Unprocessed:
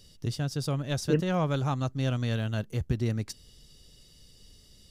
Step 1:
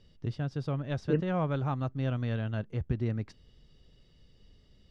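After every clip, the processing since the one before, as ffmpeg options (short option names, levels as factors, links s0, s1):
-af "lowpass=2400,volume=0.75"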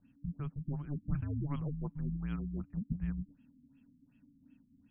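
-af "afreqshift=-290,afftfilt=real='re*lt(b*sr/1024,270*pow(3400/270,0.5+0.5*sin(2*PI*2.7*pts/sr)))':imag='im*lt(b*sr/1024,270*pow(3400/270,0.5+0.5*sin(2*PI*2.7*pts/sr)))':win_size=1024:overlap=0.75,volume=0.531"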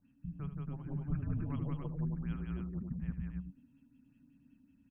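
-af "aecho=1:1:75.8|177.8|277:0.282|0.794|0.562,volume=0.668"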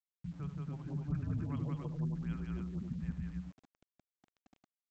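-af "highpass=49,aresample=16000,aeval=exprs='val(0)*gte(abs(val(0)),0.0015)':c=same,aresample=44100"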